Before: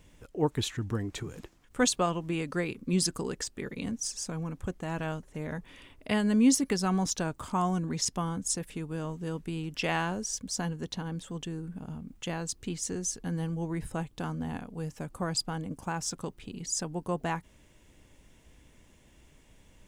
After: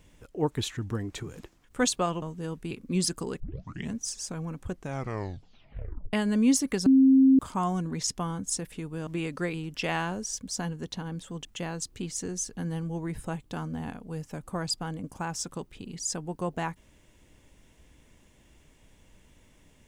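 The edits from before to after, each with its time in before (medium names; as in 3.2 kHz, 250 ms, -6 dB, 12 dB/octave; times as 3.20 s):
2.22–2.69 s: swap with 9.05–9.54 s
3.38 s: tape start 0.53 s
4.70 s: tape stop 1.41 s
6.84–7.37 s: bleep 266 Hz -14.5 dBFS
11.45–12.12 s: delete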